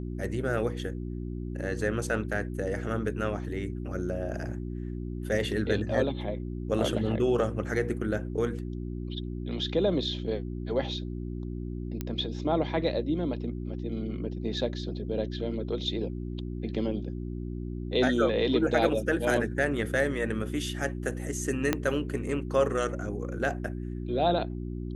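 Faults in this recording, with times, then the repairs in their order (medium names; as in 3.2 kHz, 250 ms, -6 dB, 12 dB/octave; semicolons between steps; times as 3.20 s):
hum 60 Hz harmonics 6 -35 dBFS
12.01 s: pop -18 dBFS
21.73 s: pop -10 dBFS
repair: de-click; de-hum 60 Hz, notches 6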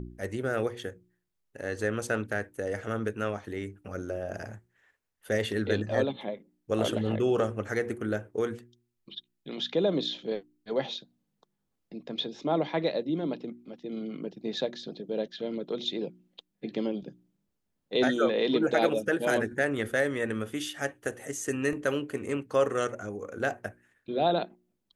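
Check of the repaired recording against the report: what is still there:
21.73 s: pop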